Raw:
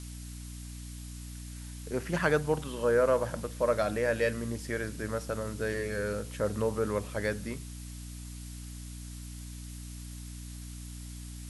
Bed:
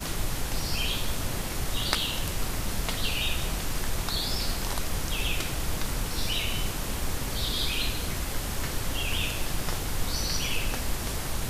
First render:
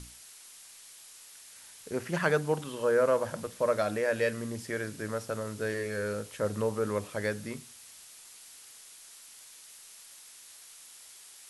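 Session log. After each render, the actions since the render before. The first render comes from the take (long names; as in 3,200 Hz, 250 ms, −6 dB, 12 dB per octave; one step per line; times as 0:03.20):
mains-hum notches 60/120/180/240/300 Hz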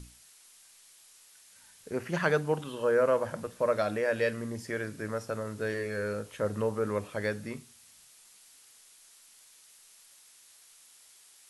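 noise reduction from a noise print 6 dB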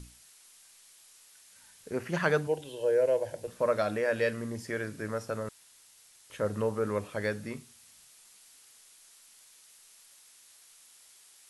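0:02.47–0:03.48: phaser with its sweep stopped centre 500 Hz, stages 4
0:05.49–0:06.30: fill with room tone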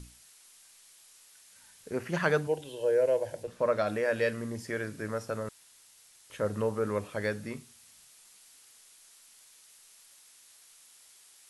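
0:03.43–0:03.87: high-shelf EQ 9,000 Hz −11.5 dB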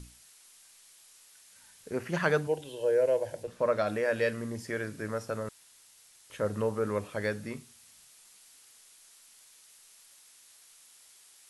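no processing that can be heard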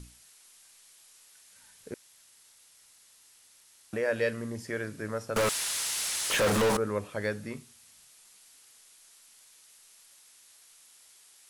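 0:01.94–0:03.93: fill with room tone
0:05.36–0:06.77: mid-hump overdrive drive 38 dB, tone 7,700 Hz, clips at −18.5 dBFS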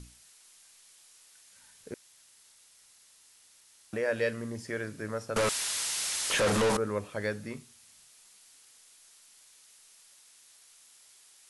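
elliptic low-pass filter 11,000 Hz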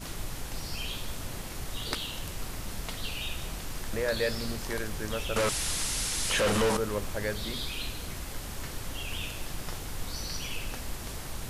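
mix in bed −7 dB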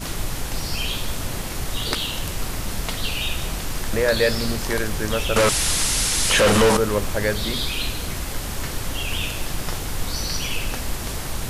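level +10 dB
brickwall limiter −3 dBFS, peak gain reduction 2.5 dB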